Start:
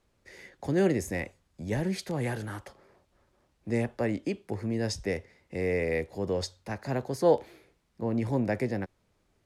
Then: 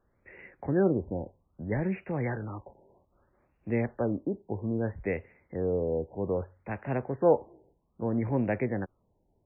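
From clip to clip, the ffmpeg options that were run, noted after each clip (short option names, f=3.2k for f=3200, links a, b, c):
-af "afftfilt=real='re*lt(b*sr/1024,970*pow(2900/970,0.5+0.5*sin(2*PI*0.62*pts/sr)))':imag='im*lt(b*sr/1024,970*pow(2900/970,0.5+0.5*sin(2*PI*0.62*pts/sr)))':win_size=1024:overlap=0.75"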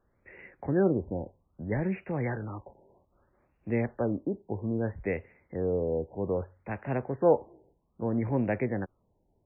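-af anull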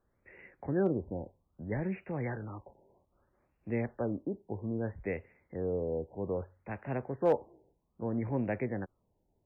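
-af "asoftclip=type=hard:threshold=-14.5dB,volume=-4.5dB"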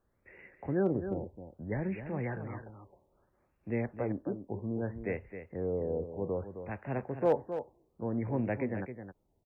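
-af "aecho=1:1:264:0.335"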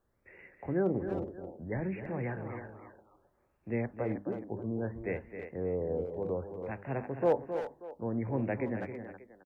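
-filter_complex "[0:a]bandreject=f=50:t=h:w=6,bandreject=f=100:t=h:w=6,bandreject=f=150:t=h:w=6,bandreject=f=200:t=h:w=6,bandreject=f=250:t=h:w=6,bandreject=f=300:t=h:w=6,asplit=2[a][b];[b]adelay=320,highpass=300,lowpass=3.4k,asoftclip=type=hard:threshold=-27.5dB,volume=-8dB[c];[a][c]amix=inputs=2:normalize=0"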